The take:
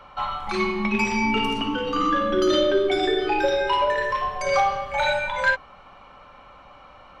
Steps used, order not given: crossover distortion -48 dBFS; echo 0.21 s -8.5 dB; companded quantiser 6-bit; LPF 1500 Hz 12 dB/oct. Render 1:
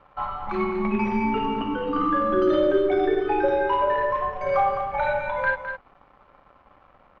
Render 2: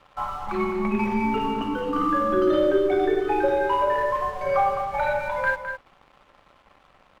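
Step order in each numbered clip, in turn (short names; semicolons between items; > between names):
echo > companded quantiser > crossover distortion > LPF; companded quantiser > LPF > crossover distortion > echo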